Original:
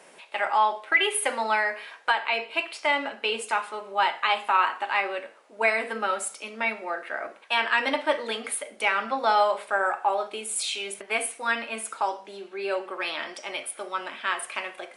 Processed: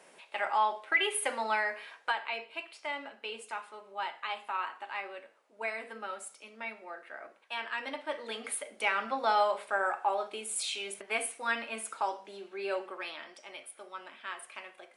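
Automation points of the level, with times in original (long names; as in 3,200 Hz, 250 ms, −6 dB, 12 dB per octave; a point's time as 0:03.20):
0:01.91 −6 dB
0:02.61 −13 dB
0:08.04 −13 dB
0:08.51 −5.5 dB
0:12.81 −5.5 dB
0:13.23 −13 dB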